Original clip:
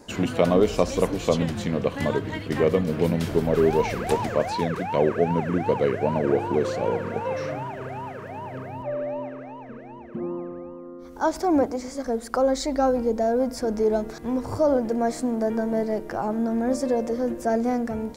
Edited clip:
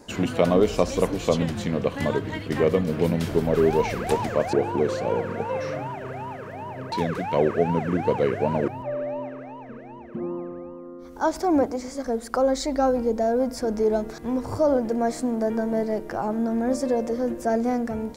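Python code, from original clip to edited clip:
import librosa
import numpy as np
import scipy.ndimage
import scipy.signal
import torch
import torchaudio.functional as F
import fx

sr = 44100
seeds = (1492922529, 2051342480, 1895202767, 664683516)

y = fx.edit(x, sr, fx.move(start_s=4.53, length_s=1.76, to_s=8.68), tone=tone)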